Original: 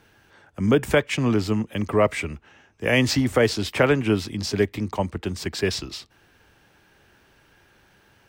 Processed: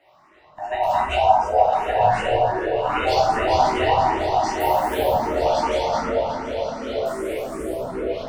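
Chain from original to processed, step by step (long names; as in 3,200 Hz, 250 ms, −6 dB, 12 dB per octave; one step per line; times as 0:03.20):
neighbouring bands swapped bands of 500 Hz
parametric band 12,000 Hz −14.5 dB 1.8 octaves
brickwall limiter −14.5 dBFS, peak gain reduction 8 dB
low-shelf EQ 160 Hz −10 dB
on a send: echo whose low-pass opens from repeat to repeat 149 ms, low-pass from 400 Hz, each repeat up 1 octave, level 0 dB
0:01.16–0:01.59: on the sum: time-frequency box erased 1,600–4,700 Hz
0:04.60–0:05.13: sample-rate reduction 13,000 Hz, jitter 20%
delay with pitch and tempo change per echo 548 ms, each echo −6 semitones, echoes 3, each echo −6 dB
dense smooth reverb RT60 1.2 s, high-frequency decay 0.7×, DRR −5.5 dB
frequency shifter mixed with the dry sound +2.6 Hz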